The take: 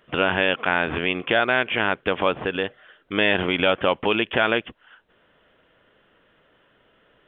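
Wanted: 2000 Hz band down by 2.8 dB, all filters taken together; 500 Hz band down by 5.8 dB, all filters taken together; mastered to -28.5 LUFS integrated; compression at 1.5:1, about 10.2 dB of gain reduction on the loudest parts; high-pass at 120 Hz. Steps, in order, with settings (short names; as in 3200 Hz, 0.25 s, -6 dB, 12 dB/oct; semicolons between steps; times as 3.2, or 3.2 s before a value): HPF 120 Hz; bell 500 Hz -7 dB; bell 2000 Hz -3.5 dB; compressor 1.5:1, threshold -47 dBFS; gain +6.5 dB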